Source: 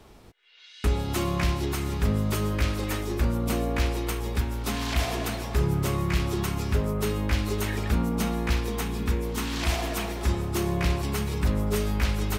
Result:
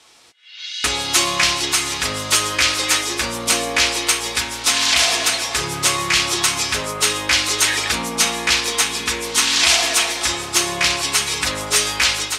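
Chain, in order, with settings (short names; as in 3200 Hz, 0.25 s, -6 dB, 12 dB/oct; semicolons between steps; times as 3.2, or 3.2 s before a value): weighting filter ITU-R 468; AGC gain up to 10.5 dB; notch comb 200 Hz; gain +2.5 dB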